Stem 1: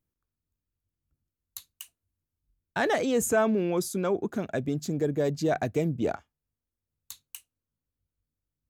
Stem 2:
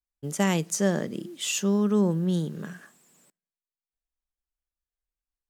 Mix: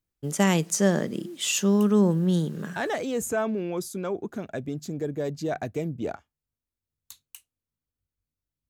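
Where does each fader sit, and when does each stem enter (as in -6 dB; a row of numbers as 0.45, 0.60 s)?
-3.0, +2.5 dB; 0.00, 0.00 s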